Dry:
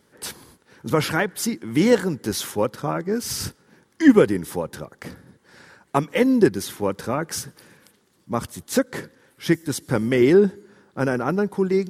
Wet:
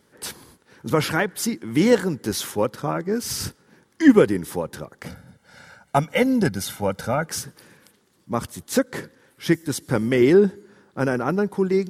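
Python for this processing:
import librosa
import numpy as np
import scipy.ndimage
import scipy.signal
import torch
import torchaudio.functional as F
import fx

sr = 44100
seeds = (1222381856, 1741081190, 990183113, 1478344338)

y = fx.comb(x, sr, ms=1.4, depth=0.72, at=(5.06, 7.26))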